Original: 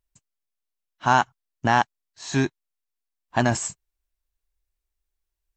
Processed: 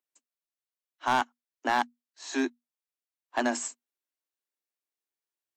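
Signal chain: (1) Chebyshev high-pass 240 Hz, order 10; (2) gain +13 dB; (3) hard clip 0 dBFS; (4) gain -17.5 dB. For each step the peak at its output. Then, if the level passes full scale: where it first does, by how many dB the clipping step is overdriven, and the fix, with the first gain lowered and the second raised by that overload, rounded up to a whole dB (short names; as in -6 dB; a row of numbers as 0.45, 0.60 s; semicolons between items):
-5.5, +7.5, 0.0, -17.5 dBFS; step 2, 7.5 dB; step 2 +5 dB, step 4 -9.5 dB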